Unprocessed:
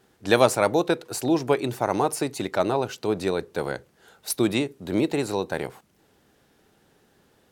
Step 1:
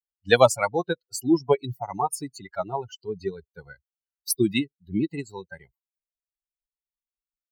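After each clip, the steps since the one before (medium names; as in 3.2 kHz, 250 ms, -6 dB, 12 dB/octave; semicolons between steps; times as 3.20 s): expander on every frequency bin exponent 3; trim +5.5 dB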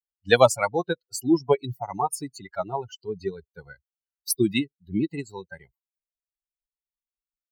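no audible change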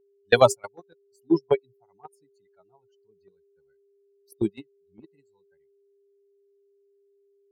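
whistle 400 Hz -29 dBFS; gate -18 dBFS, range -33 dB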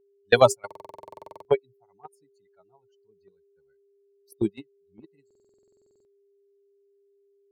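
buffer glitch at 0.66/5.26 s, samples 2048, times 16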